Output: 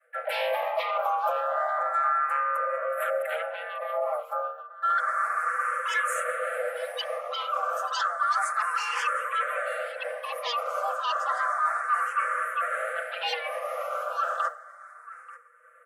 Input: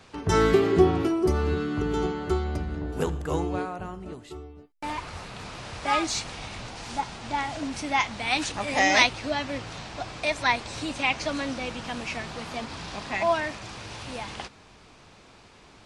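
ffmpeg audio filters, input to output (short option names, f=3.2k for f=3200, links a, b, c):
-filter_complex "[0:a]agate=range=-33dB:threshold=-39dB:ratio=3:detection=peak,firequalizer=gain_entry='entry(120,0);entry(190,-7);entry(470,-19);entry(710,9);entry(2400,-19);entry(3600,-29);entry(7500,-10);entry(11000,3)':delay=0.05:min_phase=1,aeval=exprs='0.376*sin(PI/2*5.01*val(0)/0.376)':c=same,aecho=1:1:5.6:0.92,areverse,acompressor=threshold=-20dB:ratio=6,areverse,afreqshift=470,equalizer=f=4.3k:t=o:w=2.1:g=-6.5,asplit=2[a][b];[b]asetrate=55563,aresample=44100,atempo=0.793701,volume=-12dB[c];[a][c]amix=inputs=2:normalize=0,aecho=1:1:886:0.106,asplit=2[d][e];[e]afreqshift=0.31[f];[d][f]amix=inputs=2:normalize=1,volume=-1.5dB"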